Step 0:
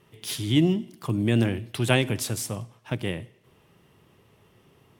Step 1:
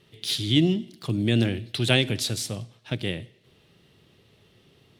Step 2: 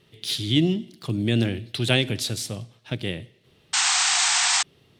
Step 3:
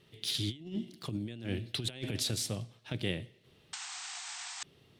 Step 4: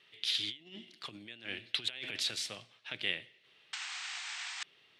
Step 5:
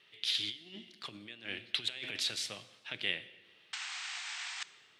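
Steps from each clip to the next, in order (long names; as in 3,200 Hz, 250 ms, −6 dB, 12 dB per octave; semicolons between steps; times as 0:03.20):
graphic EQ with 15 bands 1,000 Hz −8 dB, 4,000 Hz +11 dB, 16,000 Hz −8 dB
sound drawn into the spectrogram noise, 0:03.73–0:04.63, 690–8,600 Hz −21 dBFS
compressor whose output falls as the input rises −27 dBFS, ratio −0.5; level −9 dB
resonant band-pass 2,300 Hz, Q 1.1; level +6 dB
dense smooth reverb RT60 1.6 s, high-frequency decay 0.75×, DRR 15 dB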